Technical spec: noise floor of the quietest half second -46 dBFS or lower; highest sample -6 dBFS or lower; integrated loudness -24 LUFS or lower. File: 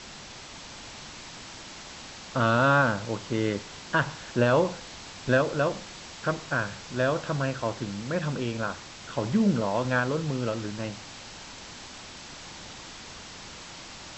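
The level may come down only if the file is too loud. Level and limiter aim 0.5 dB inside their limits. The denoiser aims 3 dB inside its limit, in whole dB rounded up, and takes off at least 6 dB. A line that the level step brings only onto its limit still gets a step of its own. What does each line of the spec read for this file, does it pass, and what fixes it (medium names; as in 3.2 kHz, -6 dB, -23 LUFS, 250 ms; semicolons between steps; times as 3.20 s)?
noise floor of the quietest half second -44 dBFS: fail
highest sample -10.0 dBFS: pass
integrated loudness -27.5 LUFS: pass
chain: noise reduction 6 dB, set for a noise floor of -44 dBFS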